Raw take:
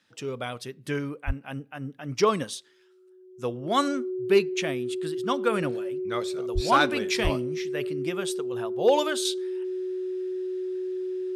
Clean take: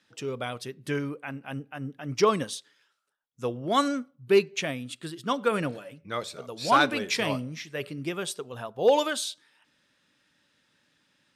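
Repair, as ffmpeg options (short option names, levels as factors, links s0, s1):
-filter_complex "[0:a]bandreject=f=370:w=30,asplit=3[s0][s1][s2];[s0]afade=t=out:st=1.26:d=0.02[s3];[s1]highpass=f=140:w=0.5412,highpass=f=140:w=1.3066,afade=t=in:st=1.26:d=0.02,afade=t=out:st=1.38:d=0.02[s4];[s2]afade=t=in:st=1.38:d=0.02[s5];[s3][s4][s5]amix=inputs=3:normalize=0,asplit=3[s6][s7][s8];[s6]afade=t=out:st=6.54:d=0.02[s9];[s7]highpass=f=140:w=0.5412,highpass=f=140:w=1.3066,afade=t=in:st=6.54:d=0.02,afade=t=out:st=6.66:d=0.02[s10];[s8]afade=t=in:st=6.66:d=0.02[s11];[s9][s10][s11]amix=inputs=3:normalize=0,asplit=3[s12][s13][s14];[s12]afade=t=out:st=7.23:d=0.02[s15];[s13]highpass=f=140:w=0.5412,highpass=f=140:w=1.3066,afade=t=in:st=7.23:d=0.02,afade=t=out:st=7.35:d=0.02[s16];[s14]afade=t=in:st=7.35:d=0.02[s17];[s15][s16][s17]amix=inputs=3:normalize=0,asetnsamples=n=441:p=0,asendcmd='9.25 volume volume -6dB',volume=1"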